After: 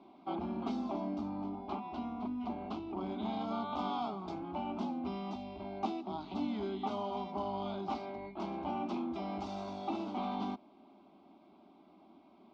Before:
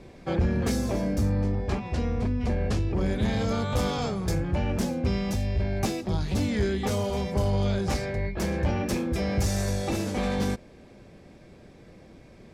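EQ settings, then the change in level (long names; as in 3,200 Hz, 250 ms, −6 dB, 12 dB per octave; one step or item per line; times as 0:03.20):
loudspeaker in its box 320–3,000 Hz, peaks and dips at 360 Hz −4 dB, 540 Hz −8 dB, 1,700 Hz −7 dB, 2,500 Hz −6 dB
phaser with its sweep stopped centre 480 Hz, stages 6
0.0 dB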